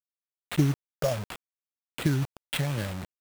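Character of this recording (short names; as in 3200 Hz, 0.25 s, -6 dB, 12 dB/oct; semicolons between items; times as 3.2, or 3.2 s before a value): phasing stages 8, 0.71 Hz, lowest notch 290–2300 Hz; a quantiser's noise floor 6-bit, dither none; tremolo saw down 1.8 Hz, depth 30%; aliases and images of a low sample rate 6000 Hz, jitter 20%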